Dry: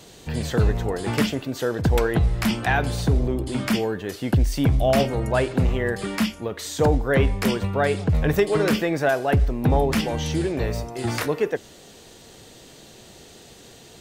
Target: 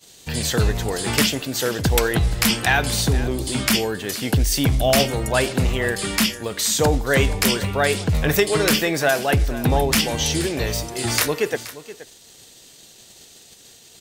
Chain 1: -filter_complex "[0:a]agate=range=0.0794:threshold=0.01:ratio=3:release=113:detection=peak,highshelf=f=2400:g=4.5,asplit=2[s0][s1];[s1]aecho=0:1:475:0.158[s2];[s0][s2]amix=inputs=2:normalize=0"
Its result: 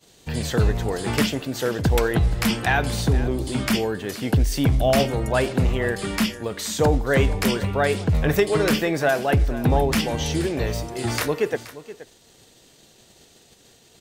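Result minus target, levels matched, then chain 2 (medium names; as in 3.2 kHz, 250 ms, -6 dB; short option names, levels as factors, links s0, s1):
4 kHz band -5.0 dB
-filter_complex "[0:a]agate=range=0.0794:threshold=0.01:ratio=3:release=113:detection=peak,highshelf=f=2400:g=14.5,asplit=2[s0][s1];[s1]aecho=0:1:475:0.158[s2];[s0][s2]amix=inputs=2:normalize=0"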